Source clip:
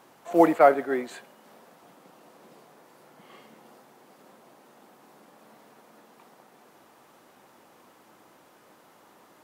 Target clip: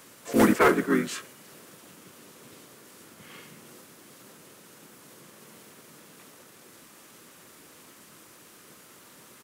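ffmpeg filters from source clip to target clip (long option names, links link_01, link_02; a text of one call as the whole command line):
ffmpeg -i in.wav -filter_complex "[0:a]asplit=3[link_01][link_02][link_03];[link_02]asetrate=29433,aresample=44100,atempo=1.49831,volume=-2dB[link_04];[link_03]asetrate=35002,aresample=44100,atempo=1.25992,volume=-3dB[link_05];[link_01][link_04][link_05]amix=inputs=3:normalize=0,acrossover=split=250|650|3400[link_06][link_07][link_08][link_09];[link_07]asoftclip=type=hard:threshold=-19.5dB[link_10];[link_08]asuperpass=centerf=2200:order=4:qfactor=0.6[link_11];[link_06][link_10][link_11][link_09]amix=inputs=4:normalize=0,highshelf=frequency=2700:gain=11.5" out.wav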